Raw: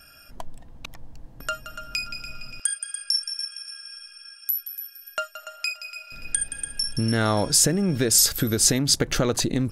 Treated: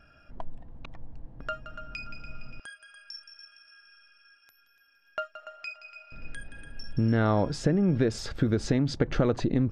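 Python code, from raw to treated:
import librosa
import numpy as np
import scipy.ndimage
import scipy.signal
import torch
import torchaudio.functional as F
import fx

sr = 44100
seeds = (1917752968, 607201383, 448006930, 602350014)

y = fx.spacing_loss(x, sr, db_at_10k=36)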